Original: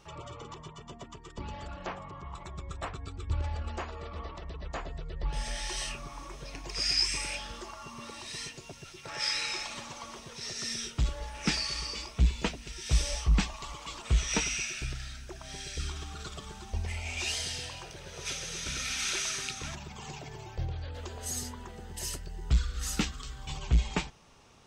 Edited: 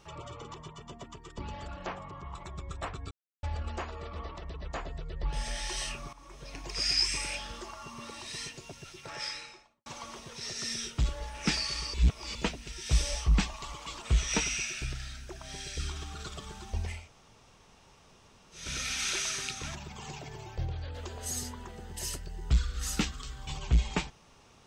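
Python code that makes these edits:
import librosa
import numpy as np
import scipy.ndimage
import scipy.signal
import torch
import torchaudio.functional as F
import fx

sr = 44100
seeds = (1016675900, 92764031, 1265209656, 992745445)

y = fx.studio_fade_out(x, sr, start_s=8.94, length_s=0.92)
y = fx.edit(y, sr, fx.silence(start_s=3.11, length_s=0.32),
    fx.fade_in_from(start_s=6.13, length_s=0.47, floor_db=-14.0),
    fx.reverse_span(start_s=11.94, length_s=0.41),
    fx.room_tone_fill(start_s=16.97, length_s=1.65, crossfade_s=0.24), tone=tone)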